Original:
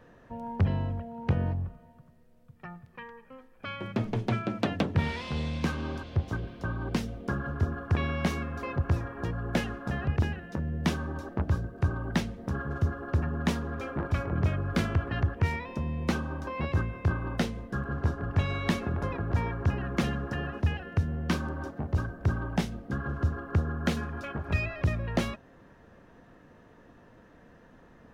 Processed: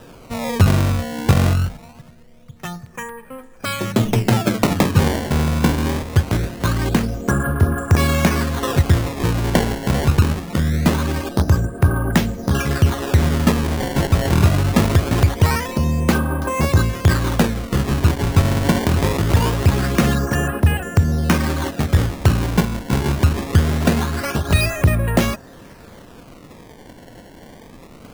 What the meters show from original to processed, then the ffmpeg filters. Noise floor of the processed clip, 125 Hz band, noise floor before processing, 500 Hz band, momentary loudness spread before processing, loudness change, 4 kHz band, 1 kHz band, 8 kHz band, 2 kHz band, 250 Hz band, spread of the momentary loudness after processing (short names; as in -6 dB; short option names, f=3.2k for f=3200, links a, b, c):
-43 dBFS, +12.5 dB, -56 dBFS, +13.0 dB, 7 LU, +13.0 dB, +14.5 dB, +12.5 dB, n/a, +11.5 dB, +13.0 dB, 5 LU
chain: -filter_complex "[0:a]asplit=2[a][b];[b]alimiter=limit=-20dB:level=0:latency=1:release=77,volume=1.5dB[c];[a][c]amix=inputs=2:normalize=0,acrusher=samples=20:mix=1:aa=0.000001:lfo=1:lforange=32:lforate=0.23,volume=7dB"